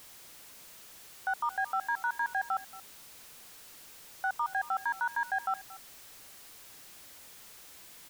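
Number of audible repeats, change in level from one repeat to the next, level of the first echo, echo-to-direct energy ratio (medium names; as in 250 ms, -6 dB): 1, no regular repeats, -18.0 dB, -18.0 dB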